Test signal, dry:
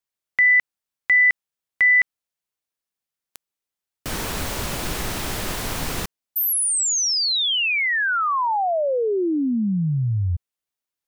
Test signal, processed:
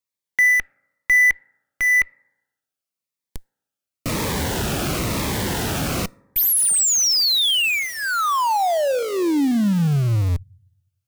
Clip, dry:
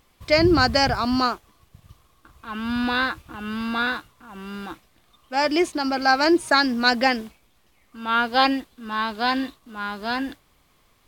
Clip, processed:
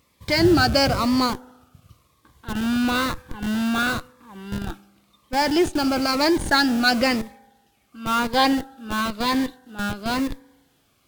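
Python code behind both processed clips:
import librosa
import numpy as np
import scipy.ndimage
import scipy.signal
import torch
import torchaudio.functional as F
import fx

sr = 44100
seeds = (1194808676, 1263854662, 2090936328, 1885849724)

p1 = scipy.signal.sosfilt(scipy.signal.butter(2, 69.0, 'highpass', fs=sr, output='sos'), x)
p2 = fx.rev_fdn(p1, sr, rt60_s=1.1, lf_ratio=0.95, hf_ratio=0.3, size_ms=11.0, drr_db=17.5)
p3 = fx.schmitt(p2, sr, flips_db=-27.0)
p4 = p2 + F.gain(torch.from_numpy(p3), -3.5).numpy()
y = fx.notch_cascade(p4, sr, direction='falling', hz=0.98)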